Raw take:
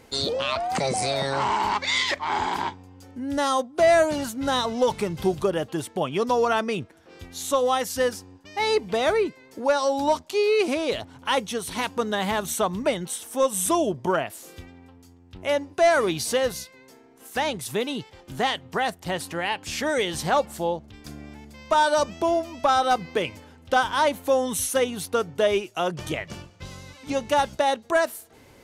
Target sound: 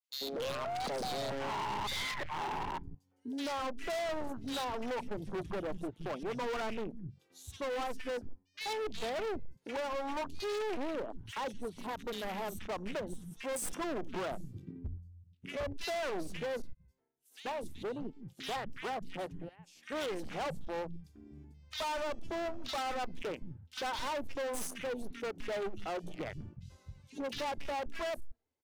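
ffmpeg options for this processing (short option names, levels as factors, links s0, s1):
-filter_complex "[0:a]bandreject=f=45.64:t=h:w=4,bandreject=f=91.28:t=h:w=4,bandreject=f=136.92:t=h:w=4,bandreject=f=182.56:t=h:w=4,asettb=1/sr,asplit=3[s0][s1][s2];[s0]atrim=end=19.224[s3];[s1]atrim=start=19.22:end=19.83,asetpts=PTS-STARTPTS,afade=t=in:d=0.004:c=qsin,afade=t=out:st=0.606:d=0.004:c=qsin,acompressor=threshold=0.0158:ratio=6[s4];[s2]atrim=start=19.826[s5];[s3][s4]acrossfade=d=0.004:c1=hsin:c2=qsin[s6];[s6][s5]acrossfade=d=0.004:c1=qsin:c2=hsin,agate=range=0.0224:threshold=0.00794:ratio=3:detection=peak,aeval=exprs='0.282*(cos(1*acos(clip(val(0)/0.282,-1,1)))-cos(1*PI/2))+0.00631*(cos(7*acos(clip(val(0)/0.282,-1,1)))-cos(7*PI/2))':c=same,asplit=3[s7][s8][s9];[s7]afade=t=out:st=14.28:d=0.02[s10];[s8]asubboost=boost=8:cutoff=230,afade=t=in:st=14.28:d=0.02,afade=t=out:st=15.47:d=0.02[s11];[s9]afade=t=in:st=15.47:d=0.02[s12];[s10][s11][s12]amix=inputs=3:normalize=0,aeval=exprs='0.282*(cos(1*acos(clip(val(0)/0.282,-1,1)))-cos(1*PI/2))+0.0631*(cos(6*acos(clip(val(0)/0.282,-1,1)))-cos(6*PI/2))+0.0251*(cos(8*acos(clip(val(0)/0.282,-1,1)))-cos(8*PI/2))':c=same,acrossover=split=180|2300[s13][s14][s15];[s14]adelay=90[s16];[s13]adelay=260[s17];[s17][s16][s15]amix=inputs=3:normalize=0,afwtdn=0.0224,volume=22.4,asoftclip=hard,volume=0.0447,asettb=1/sr,asplit=3[s18][s19][s20];[s18]atrim=end=11.864[s21];[s19]atrim=start=11.86:end=12.59,asetpts=PTS-STARTPTS,afade=t=in:d=0.004:c=qsin,afade=t=out:st=0.726:d=0.004:c=qsin,equalizer=f=13000:w=2.8:g=12.5[s22];[s20]atrim=start=12.586[s23];[s21][s22]acrossfade=d=0.004:c1=hsin:c2=qsin[s24];[s24][s23]acrossfade=d=0.004:c1=qsin:c2=hsin,alimiter=level_in=2.37:limit=0.0631:level=0:latency=1:release=212,volume=0.422,volume=0.75"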